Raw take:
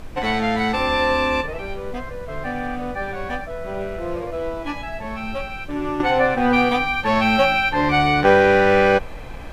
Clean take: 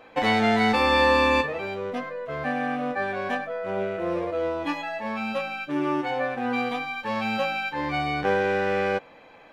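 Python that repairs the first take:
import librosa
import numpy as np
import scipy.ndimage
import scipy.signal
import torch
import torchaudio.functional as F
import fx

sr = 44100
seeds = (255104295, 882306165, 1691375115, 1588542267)

y = fx.noise_reduce(x, sr, print_start_s=9.01, print_end_s=9.51, reduce_db=6.0)
y = fx.gain(y, sr, db=fx.steps((0.0, 0.0), (6.0, -9.5)))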